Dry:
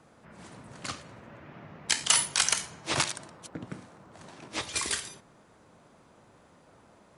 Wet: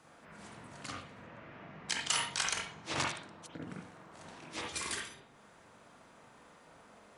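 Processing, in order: 1.23–3.46 LPF 8500 Hz 12 dB/oct; reverb, pre-delay 43 ms, DRR -1.5 dB; mismatched tape noise reduction encoder only; gain -8.5 dB

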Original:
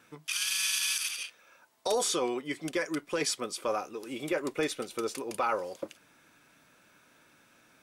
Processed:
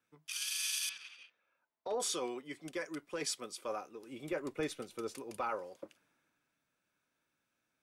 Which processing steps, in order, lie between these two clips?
0.89–2 LPF 2500 Hz 12 dB/oct; 3.94–5.49 low shelf 190 Hz +7.5 dB; three-band expander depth 40%; gain -9 dB

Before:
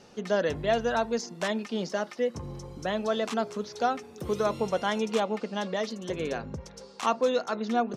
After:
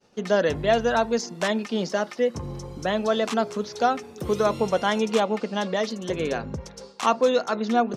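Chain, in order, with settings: expander -45 dBFS; gain +5 dB

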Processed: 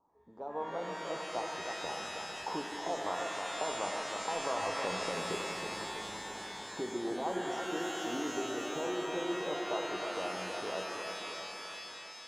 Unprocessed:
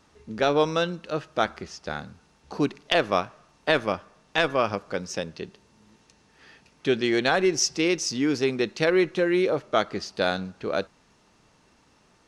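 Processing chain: Doppler pass-by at 5.53, 6 m/s, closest 3.3 m; limiter -25 dBFS, peak gain reduction 11 dB; compressor 2.5:1, threshold -58 dBFS, peak gain reduction 18.5 dB; tone controls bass -11 dB, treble +10 dB; on a send: split-band echo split 1300 Hz, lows 0.32 s, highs 0.245 s, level -7 dB; on the sum: AGC gain up to 10 dB; EQ curve 610 Hz 0 dB, 960 Hz +9 dB, 1800 Hz -29 dB; shimmer reverb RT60 3.2 s, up +12 st, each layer -2 dB, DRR 2 dB; gain +6.5 dB

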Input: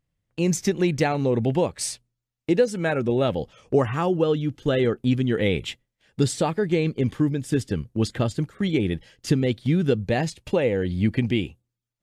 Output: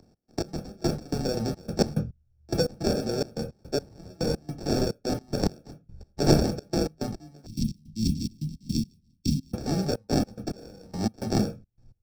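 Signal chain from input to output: pre-emphasis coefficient 0.97; sample-rate reducer 1000 Hz, jitter 0%; bell 5400 Hz +6.5 dB 0.46 oct; reverb RT60 0.20 s, pre-delay 25 ms, DRR 6.5 dB; step gate "x.x...x.xxx." 107 bpm -24 dB; 7.46–9.53 elliptic band-stop 250–3000 Hz, stop band 50 dB; three-band squash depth 40%; gain +8.5 dB

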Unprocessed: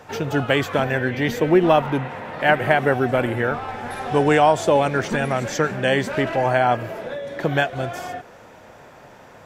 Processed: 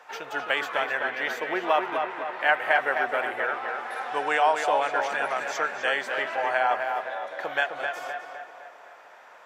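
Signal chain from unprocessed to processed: HPF 950 Hz 12 dB/oct; high shelf 3200 Hz -10 dB; on a send: tape echo 0.258 s, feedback 53%, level -4.5 dB, low-pass 2900 Hz

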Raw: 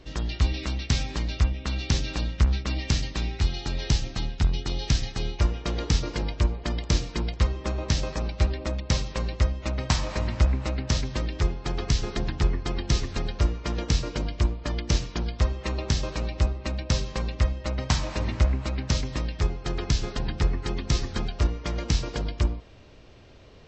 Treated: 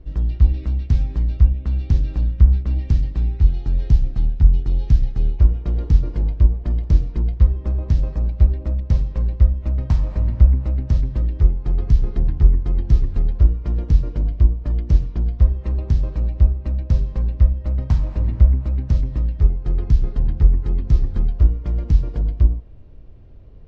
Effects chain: tilt -4.5 dB/oct; gain -8.5 dB

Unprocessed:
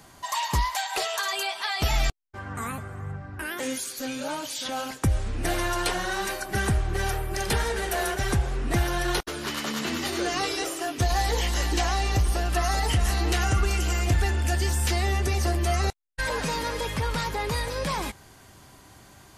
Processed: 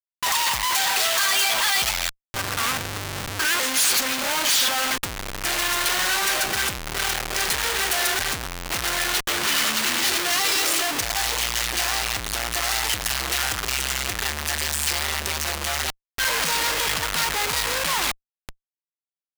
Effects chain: Schmitt trigger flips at -39 dBFS; tilt shelf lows -8.5 dB, about 770 Hz

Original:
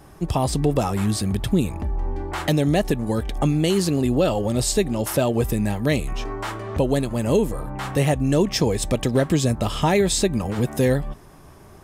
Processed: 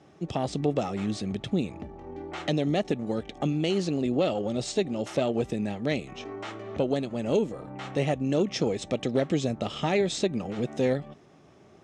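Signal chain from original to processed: added harmonics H 2 -13 dB, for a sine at -9 dBFS; speaker cabinet 160–6200 Hz, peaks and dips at 1000 Hz -10 dB, 1600 Hz -6 dB, 4800 Hz -6 dB; gain -5 dB

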